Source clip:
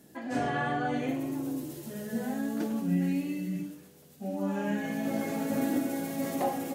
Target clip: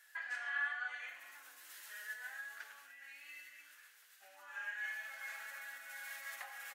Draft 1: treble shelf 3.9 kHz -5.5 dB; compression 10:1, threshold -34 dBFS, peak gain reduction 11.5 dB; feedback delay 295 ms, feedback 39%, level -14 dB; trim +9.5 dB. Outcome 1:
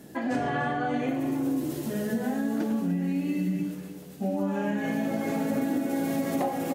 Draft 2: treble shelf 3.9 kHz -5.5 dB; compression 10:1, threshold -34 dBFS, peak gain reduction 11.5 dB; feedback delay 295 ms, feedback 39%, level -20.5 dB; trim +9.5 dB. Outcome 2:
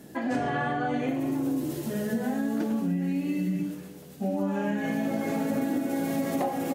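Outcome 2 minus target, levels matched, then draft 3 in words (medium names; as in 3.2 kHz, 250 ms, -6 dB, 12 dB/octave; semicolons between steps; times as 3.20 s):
1 kHz band +4.0 dB
treble shelf 3.9 kHz -5.5 dB; compression 10:1, threshold -34 dBFS, peak gain reduction 11.5 dB; ladder high-pass 1.4 kHz, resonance 55%; feedback delay 295 ms, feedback 39%, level -20.5 dB; trim +9.5 dB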